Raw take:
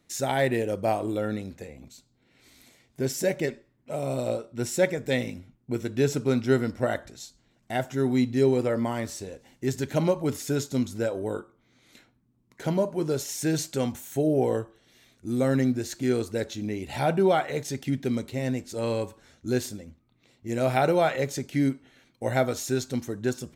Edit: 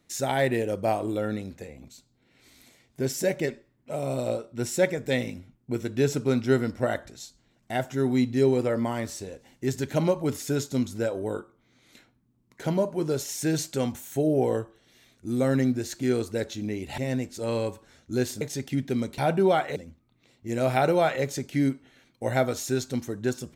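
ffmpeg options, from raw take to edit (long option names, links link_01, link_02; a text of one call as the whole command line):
ffmpeg -i in.wav -filter_complex "[0:a]asplit=5[link_01][link_02][link_03][link_04][link_05];[link_01]atrim=end=16.982[link_06];[link_02]atrim=start=18.328:end=19.762[link_07];[link_03]atrim=start=17.558:end=18.332[link_08];[link_04]atrim=start=16.978:end=17.562[link_09];[link_05]atrim=start=19.758[link_10];[link_06][link_07]acrossfade=duration=0.004:curve1=hsin:curve2=hsin[link_11];[link_11][link_08]acrossfade=duration=0.004:curve1=hsin:curve2=hsin[link_12];[link_12][link_09]acrossfade=duration=0.004:curve1=hsin:curve2=hsin[link_13];[link_13][link_10]acrossfade=duration=0.004:curve1=hsin:curve2=hsin" out.wav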